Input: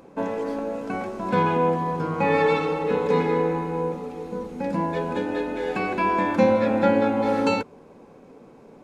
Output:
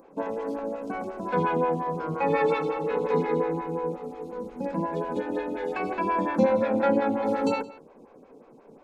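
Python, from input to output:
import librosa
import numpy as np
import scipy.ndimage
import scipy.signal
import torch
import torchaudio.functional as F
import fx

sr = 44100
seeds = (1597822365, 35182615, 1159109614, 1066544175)

y = x + 10.0 ** (-18.5 / 20.0) * np.pad(x, (int(168 * sr / 1000.0), 0))[:len(x)]
y = fx.stagger_phaser(y, sr, hz=5.6)
y = y * librosa.db_to_amplitude(-1.5)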